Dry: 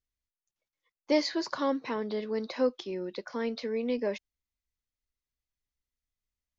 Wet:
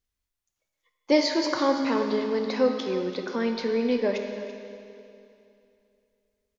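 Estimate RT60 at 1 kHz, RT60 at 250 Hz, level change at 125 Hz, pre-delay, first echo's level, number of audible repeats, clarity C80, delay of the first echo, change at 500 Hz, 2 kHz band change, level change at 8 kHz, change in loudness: 2.7 s, 2.7 s, no reading, 14 ms, -13.5 dB, 1, 5.5 dB, 334 ms, +6.0 dB, +6.5 dB, no reading, +6.0 dB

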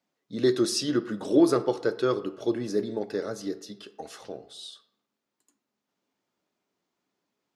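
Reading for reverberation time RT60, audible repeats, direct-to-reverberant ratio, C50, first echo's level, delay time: 0.85 s, no echo, 11.0 dB, 15.0 dB, no echo, no echo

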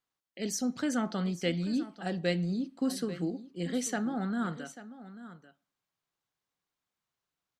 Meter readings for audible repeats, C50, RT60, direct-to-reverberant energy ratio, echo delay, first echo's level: 1, no reverb, no reverb, no reverb, 840 ms, -15.0 dB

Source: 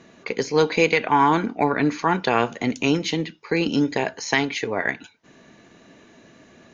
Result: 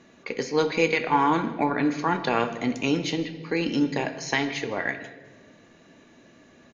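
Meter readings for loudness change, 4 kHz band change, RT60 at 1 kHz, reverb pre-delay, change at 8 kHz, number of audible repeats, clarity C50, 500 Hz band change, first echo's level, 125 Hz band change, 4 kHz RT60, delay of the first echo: -3.5 dB, -4.0 dB, 1.3 s, 4 ms, no reading, 1, 11.0 dB, -4.0 dB, -20.5 dB, -4.0 dB, 1.1 s, 158 ms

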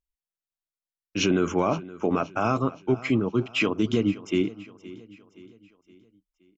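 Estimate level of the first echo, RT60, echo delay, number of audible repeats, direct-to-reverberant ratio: -18.5 dB, no reverb, 520 ms, 3, no reverb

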